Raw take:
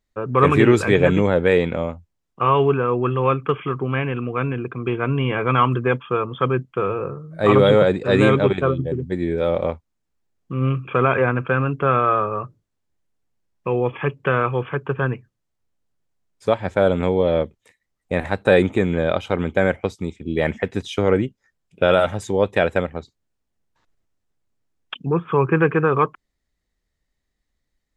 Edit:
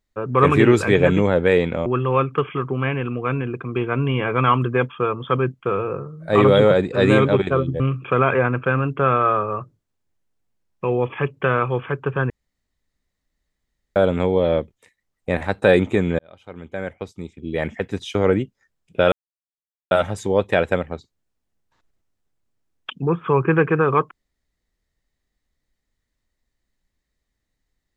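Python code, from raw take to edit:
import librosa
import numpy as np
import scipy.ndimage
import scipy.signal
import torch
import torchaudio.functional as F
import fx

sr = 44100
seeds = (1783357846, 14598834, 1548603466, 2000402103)

y = fx.edit(x, sr, fx.cut(start_s=1.86, length_s=1.11),
    fx.cut(start_s=8.91, length_s=1.72),
    fx.room_tone_fill(start_s=15.13, length_s=1.66),
    fx.fade_in_span(start_s=19.02, length_s=2.1),
    fx.insert_silence(at_s=21.95, length_s=0.79), tone=tone)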